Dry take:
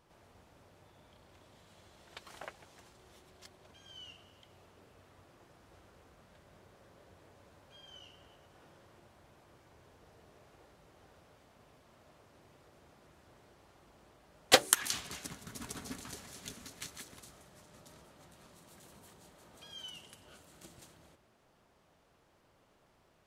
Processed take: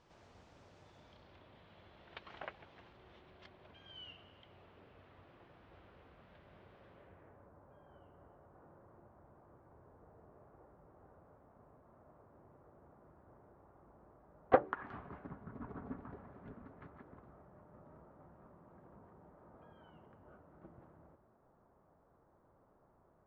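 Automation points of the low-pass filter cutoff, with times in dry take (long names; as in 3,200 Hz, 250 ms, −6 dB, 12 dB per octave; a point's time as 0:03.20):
low-pass filter 24 dB per octave
0:00.95 6,900 Hz
0:01.47 3,400 Hz
0:06.89 3,400 Hz
0:07.52 1,300 Hz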